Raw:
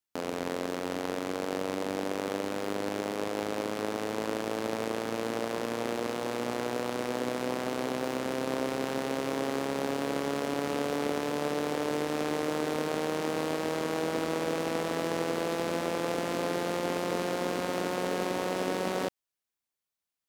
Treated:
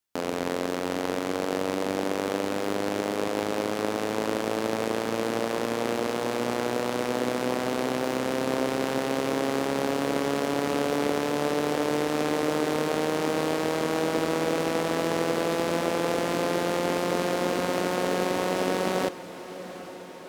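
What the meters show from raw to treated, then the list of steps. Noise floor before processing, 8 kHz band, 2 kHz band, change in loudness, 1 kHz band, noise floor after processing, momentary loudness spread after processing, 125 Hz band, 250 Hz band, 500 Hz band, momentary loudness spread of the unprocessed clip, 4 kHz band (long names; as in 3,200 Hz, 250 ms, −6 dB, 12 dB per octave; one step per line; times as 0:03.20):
below −85 dBFS, +4.5 dB, +4.5 dB, +4.5 dB, +4.5 dB, −39 dBFS, 3 LU, +4.5 dB, +4.5 dB, +4.5 dB, 2 LU, +4.5 dB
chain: feedback delay with all-pass diffusion 818 ms, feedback 69%, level −15.5 dB
level +4.5 dB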